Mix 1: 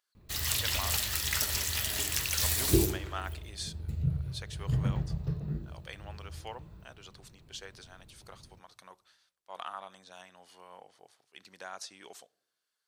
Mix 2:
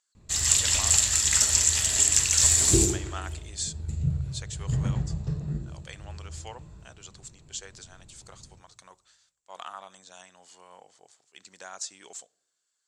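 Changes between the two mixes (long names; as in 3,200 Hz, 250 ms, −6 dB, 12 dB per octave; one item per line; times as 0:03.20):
background: send +10.0 dB
master: add low-pass with resonance 7,400 Hz, resonance Q 8.1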